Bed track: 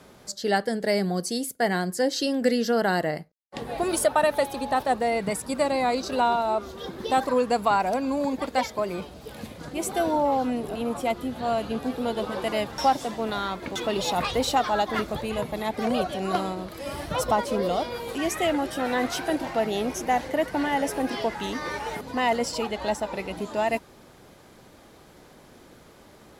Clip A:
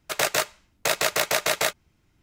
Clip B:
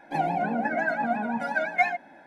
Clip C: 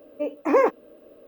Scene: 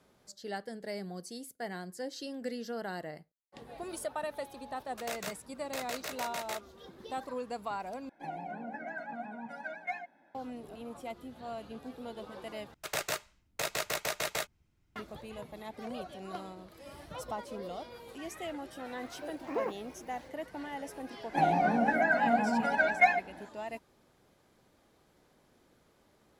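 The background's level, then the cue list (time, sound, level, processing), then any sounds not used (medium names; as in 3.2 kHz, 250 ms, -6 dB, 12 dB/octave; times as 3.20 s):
bed track -15.5 dB
4.88 s: add A -17 dB
8.09 s: replace with B -14.5 dB
12.74 s: replace with A -11 dB + bass shelf 160 Hz +6.5 dB
19.02 s: add C -16 dB
21.23 s: add B -0.5 dB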